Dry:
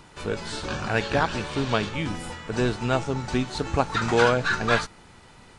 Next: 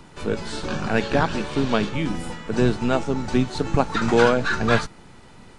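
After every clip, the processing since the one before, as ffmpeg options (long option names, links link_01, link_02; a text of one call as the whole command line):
ffmpeg -i in.wav -filter_complex "[0:a]lowshelf=frequency=400:gain=8,acrossover=split=130[link_01][link_02];[link_01]aeval=exprs='abs(val(0))':channel_layout=same[link_03];[link_03][link_02]amix=inputs=2:normalize=0" out.wav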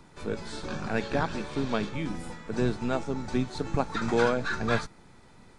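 ffmpeg -i in.wav -af "bandreject=frequency=2900:width=9.9,volume=-7.5dB" out.wav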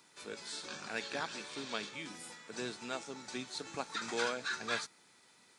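ffmpeg -i in.wav -af "highpass=480,equalizer=frequency=700:width=0.37:gain=-14,volume=3dB" out.wav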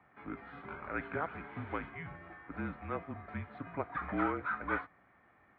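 ffmpeg -i in.wav -af "highpass=frequency=170:width_type=q:width=0.5412,highpass=frequency=170:width_type=q:width=1.307,lowpass=frequency=2200:width_type=q:width=0.5176,lowpass=frequency=2200:width_type=q:width=0.7071,lowpass=frequency=2200:width_type=q:width=1.932,afreqshift=-160,highpass=63,volume=3dB" out.wav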